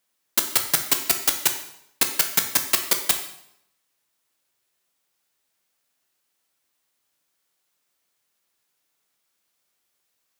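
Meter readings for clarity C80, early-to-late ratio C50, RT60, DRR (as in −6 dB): 11.5 dB, 9.0 dB, 0.75 s, 5.0 dB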